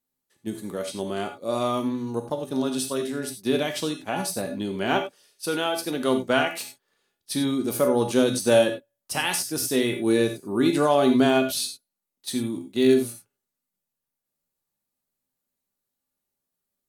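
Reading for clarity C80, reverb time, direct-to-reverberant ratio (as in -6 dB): 12.0 dB, no single decay rate, 3.5 dB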